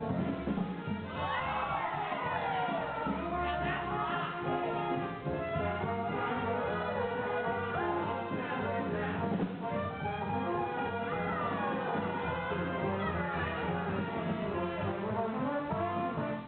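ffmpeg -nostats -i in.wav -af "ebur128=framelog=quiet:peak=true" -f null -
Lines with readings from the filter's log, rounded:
Integrated loudness:
  I:         -34.2 LUFS
  Threshold: -44.2 LUFS
Loudness range:
  LRA:         0.5 LU
  Threshold: -54.2 LUFS
  LRA low:   -34.4 LUFS
  LRA high:  -33.9 LUFS
True peak:
  Peak:      -20.7 dBFS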